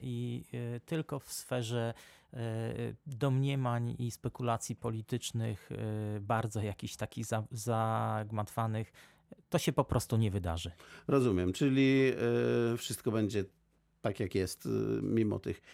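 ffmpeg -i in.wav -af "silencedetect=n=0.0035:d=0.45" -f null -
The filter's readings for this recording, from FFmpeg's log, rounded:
silence_start: 13.47
silence_end: 14.04 | silence_duration: 0.58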